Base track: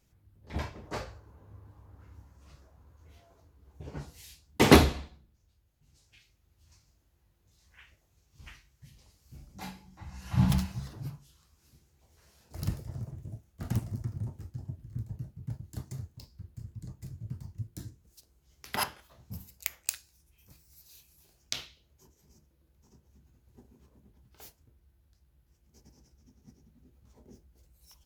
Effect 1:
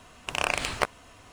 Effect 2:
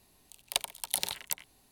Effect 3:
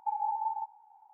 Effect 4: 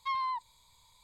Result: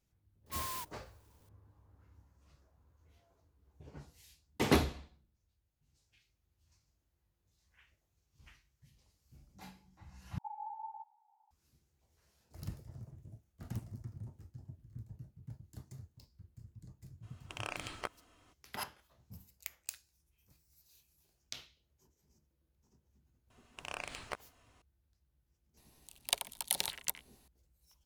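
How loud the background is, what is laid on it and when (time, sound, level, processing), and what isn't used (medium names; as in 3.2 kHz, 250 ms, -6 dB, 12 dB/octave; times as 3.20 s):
base track -10.5 dB
0.46 s: add 4 -8 dB + sampling jitter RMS 0.14 ms
10.38 s: replace with 3 -12.5 dB
17.22 s: add 1 -15.5 dB, fades 0.02 s + small resonant body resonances 320/1300/3200 Hz, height 8 dB
23.50 s: add 1 -16 dB
25.77 s: add 2 -2.5 dB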